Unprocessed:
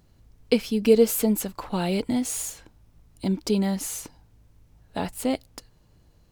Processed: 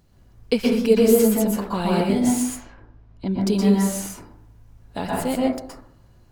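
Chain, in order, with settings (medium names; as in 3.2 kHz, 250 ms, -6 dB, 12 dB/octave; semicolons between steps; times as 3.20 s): 2.43–3.40 s: distance through air 200 m; plate-style reverb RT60 0.62 s, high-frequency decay 0.25×, pre-delay 110 ms, DRR -4 dB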